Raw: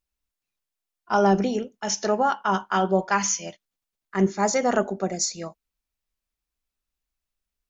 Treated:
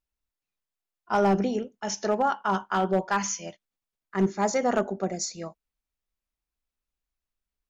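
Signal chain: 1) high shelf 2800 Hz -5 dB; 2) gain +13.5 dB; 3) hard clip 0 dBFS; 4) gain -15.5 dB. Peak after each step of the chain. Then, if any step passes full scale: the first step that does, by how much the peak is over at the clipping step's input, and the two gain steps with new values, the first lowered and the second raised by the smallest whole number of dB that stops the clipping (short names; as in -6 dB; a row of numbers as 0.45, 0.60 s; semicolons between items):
-8.5, +5.0, 0.0, -15.5 dBFS; step 2, 5.0 dB; step 2 +8.5 dB, step 4 -10.5 dB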